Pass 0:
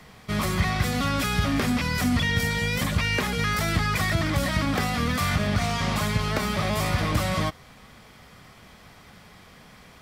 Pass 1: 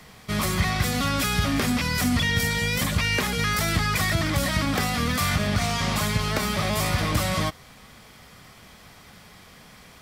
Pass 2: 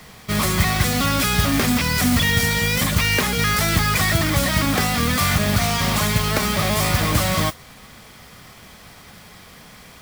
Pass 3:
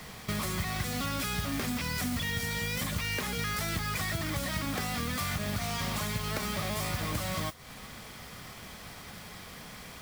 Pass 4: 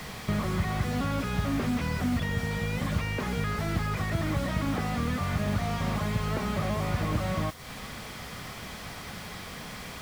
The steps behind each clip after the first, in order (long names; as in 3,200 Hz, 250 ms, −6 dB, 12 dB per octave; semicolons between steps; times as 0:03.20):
high-shelf EQ 4,000 Hz +6 dB
noise that follows the level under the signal 11 dB; level +4.5 dB
downward compressor 4 to 1, threshold −30 dBFS, peak gain reduction 14.5 dB; level −2 dB
slew-rate limiting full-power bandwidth 19 Hz; level +6 dB